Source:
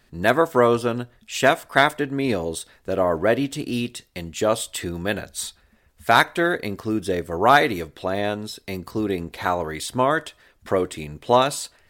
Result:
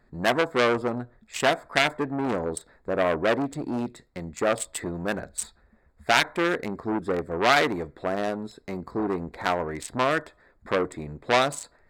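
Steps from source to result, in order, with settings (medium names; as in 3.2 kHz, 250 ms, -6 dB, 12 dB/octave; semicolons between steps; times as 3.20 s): local Wiener filter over 15 samples; graphic EQ with 31 bands 100 Hz -10 dB, 2 kHz +3 dB, 8 kHz +6 dB; transformer saturation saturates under 2.9 kHz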